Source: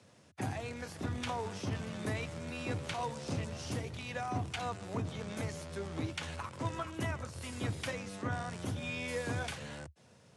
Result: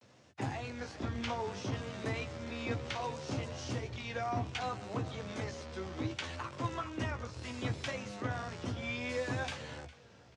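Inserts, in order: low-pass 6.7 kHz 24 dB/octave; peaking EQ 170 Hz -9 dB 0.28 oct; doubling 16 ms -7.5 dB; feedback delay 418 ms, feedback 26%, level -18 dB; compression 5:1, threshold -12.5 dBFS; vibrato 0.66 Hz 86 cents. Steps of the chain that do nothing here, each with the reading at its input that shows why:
compression, threshold -12.5 dBFS: peak at its input -21.5 dBFS

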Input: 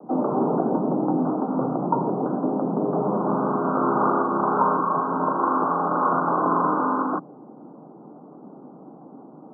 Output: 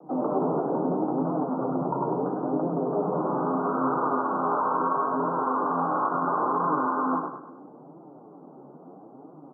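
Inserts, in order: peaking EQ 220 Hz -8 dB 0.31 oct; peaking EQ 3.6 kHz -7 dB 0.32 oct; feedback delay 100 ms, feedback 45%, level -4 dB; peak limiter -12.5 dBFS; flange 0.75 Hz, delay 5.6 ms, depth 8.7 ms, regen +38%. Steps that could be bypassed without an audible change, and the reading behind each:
peaking EQ 3.6 kHz: input has nothing above 1.6 kHz

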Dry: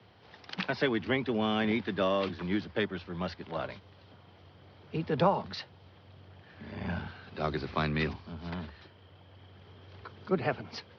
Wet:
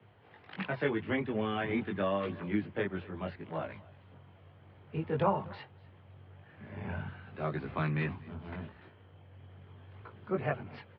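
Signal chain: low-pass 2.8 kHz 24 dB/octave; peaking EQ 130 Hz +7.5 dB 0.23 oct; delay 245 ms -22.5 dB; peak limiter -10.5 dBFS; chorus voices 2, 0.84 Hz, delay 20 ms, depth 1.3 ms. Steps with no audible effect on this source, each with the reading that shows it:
peak limiter -10.5 dBFS: peak at its input -13.0 dBFS

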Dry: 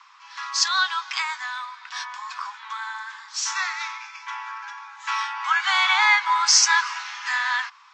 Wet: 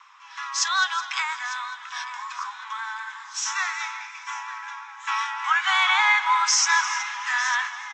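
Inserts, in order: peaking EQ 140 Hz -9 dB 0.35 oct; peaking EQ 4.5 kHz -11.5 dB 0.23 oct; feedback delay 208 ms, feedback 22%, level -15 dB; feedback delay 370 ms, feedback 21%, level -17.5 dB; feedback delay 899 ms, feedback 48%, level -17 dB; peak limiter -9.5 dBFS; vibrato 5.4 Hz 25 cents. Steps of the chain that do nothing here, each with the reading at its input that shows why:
peaking EQ 140 Hz: input has nothing below 720 Hz

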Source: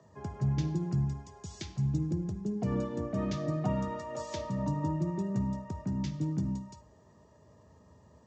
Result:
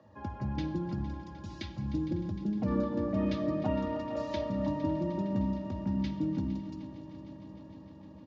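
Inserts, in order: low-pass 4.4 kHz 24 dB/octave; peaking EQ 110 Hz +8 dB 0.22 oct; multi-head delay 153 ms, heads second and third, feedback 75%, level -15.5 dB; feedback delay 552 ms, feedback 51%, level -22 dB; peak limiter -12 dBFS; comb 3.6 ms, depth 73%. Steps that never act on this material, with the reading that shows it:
peak limiter -12 dBFS: peak at its input -18.5 dBFS

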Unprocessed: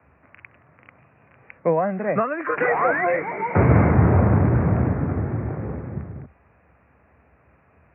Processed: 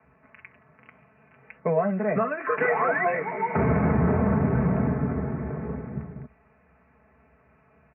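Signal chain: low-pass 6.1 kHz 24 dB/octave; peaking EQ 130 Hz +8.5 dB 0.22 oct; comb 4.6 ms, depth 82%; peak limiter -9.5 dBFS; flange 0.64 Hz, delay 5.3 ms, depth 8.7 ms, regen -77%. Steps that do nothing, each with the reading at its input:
low-pass 6.1 kHz: input has nothing above 2.3 kHz

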